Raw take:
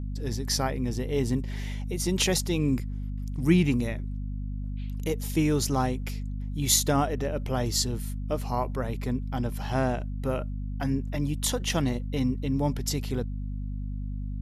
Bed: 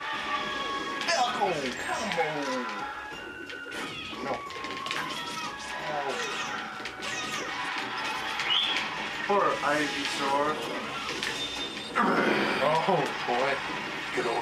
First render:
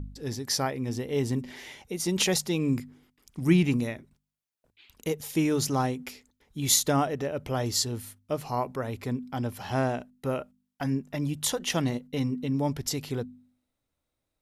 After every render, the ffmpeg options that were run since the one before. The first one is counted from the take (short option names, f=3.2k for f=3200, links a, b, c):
-af "bandreject=f=50:t=h:w=4,bandreject=f=100:t=h:w=4,bandreject=f=150:t=h:w=4,bandreject=f=200:t=h:w=4,bandreject=f=250:t=h:w=4"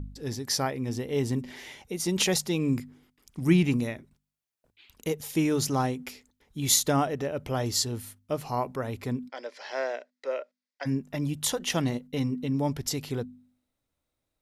-filter_complex "[0:a]asplit=3[a][b][c];[a]afade=t=out:st=9.28:d=0.02[d];[b]highpass=f=460:w=0.5412,highpass=f=460:w=1.3066,equalizer=f=550:t=q:w=4:g=5,equalizer=f=790:t=q:w=4:g=-9,equalizer=f=1.2k:t=q:w=4:g=-7,equalizer=f=2k:t=q:w=4:g=7,equalizer=f=2.9k:t=q:w=4:g=-5,equalizer=f=4.7k:t=q:w=4:g=5,lowpass=f=6.2k:w=0.5412,lowpass=f=6.2k:w=1.3066,afade=t=in:st=9.28:d=0.02,afade=t=out:st=10.85:d=0.02[e];[c]afade=t=in:st=10.85:d=0.02[f];[d][e][f]amix=inputs=3:normalize=0"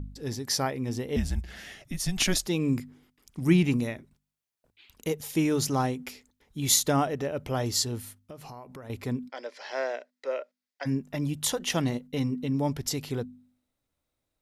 -filter_complex "[0:a]asettb=1/sr,asplit=3[a][b][c];[a]atrim=end=1.164[d];[b]atrim=start=1.16:end=2.47,asetpts=PTS-STARTPTS,afade=t=in:d=0.004:c=qsin,afade=t=out:st=1.306:d=0.004:c=qsin,afreqshift=-190[e];[c]atrim=start=2.466[f];[d][e]acrossfade=d=0.004:c1=hsin:c2=qsin[g];[g][f]acrossfade=d=0.004:c1=qsin:c2=hsin,asettb=1/sr,asplit=3[h][i][j];[h]atrim=end=8.194[k];[i]atrim=start=8.19:end=8.9,asetpts=PTS-STARTPTS,afade=t=in:d=0.004:c=qsin,afade=t=out:st=0.706:d=0.004:c=qsin,acompressor=threshold=-40dB:ratio=8:attack=3.2:release=140:knee=1:detection=peak[l];[j]atrim=start=8.896[m];[k][l]acrossfade=d=0.004:c1=hsin:c2=qsin[n];[n][m]acrossfade=d=0.004:c1=qsin:c2=hsin"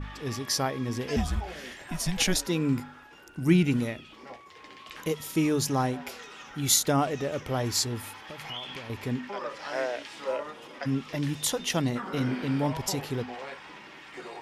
-filter_complex "[1:a]volume=-13dB[a];[0:a][a]amix=inputs=2:normalize=0"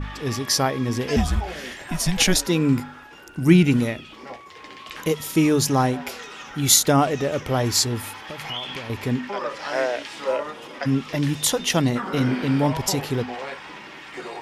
-af "volume=7dB"